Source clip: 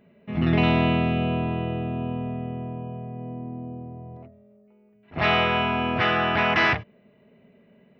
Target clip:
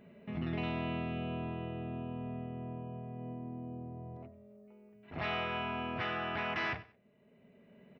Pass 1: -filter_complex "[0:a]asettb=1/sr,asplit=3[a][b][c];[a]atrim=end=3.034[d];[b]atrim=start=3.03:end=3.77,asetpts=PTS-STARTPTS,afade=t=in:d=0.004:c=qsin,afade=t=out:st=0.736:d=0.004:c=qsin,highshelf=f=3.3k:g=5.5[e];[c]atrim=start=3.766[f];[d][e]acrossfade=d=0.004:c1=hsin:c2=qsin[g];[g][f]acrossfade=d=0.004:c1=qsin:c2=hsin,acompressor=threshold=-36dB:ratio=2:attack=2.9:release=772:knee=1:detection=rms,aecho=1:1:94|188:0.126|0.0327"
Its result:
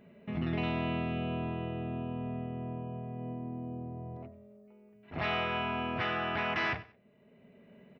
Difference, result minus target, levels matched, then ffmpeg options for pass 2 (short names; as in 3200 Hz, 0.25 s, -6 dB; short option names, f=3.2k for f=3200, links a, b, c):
compressor: peak gain reduction -3.5 dB
-filter_complex "[0:a]asettb=1/sr,asplit=3[a][b][c];[a]atrim=end=3.034[d];[b]atrim=start=3.03:end=3.77,asetpts=PTS-STARTPTS,afade=t=in:d=0.004:c=qsin,afade=t=out:st=0.736:d=0.004:c=qsin,highshelf=f=3.3k:g=5.5[e];[c]atrim=start=3.766[f];[d][e]acrossfade=d=0.004:c1=hsin:c2=qsin[g];[g][f]acrossfade=d=0.004:c1=qsin:c2=hsin,acompressor=threshold=-43dB:ratio=2:attack=2.9:release=772:knee=1:detection=rms,aecho=1:1:94|188:0.126|0.0327"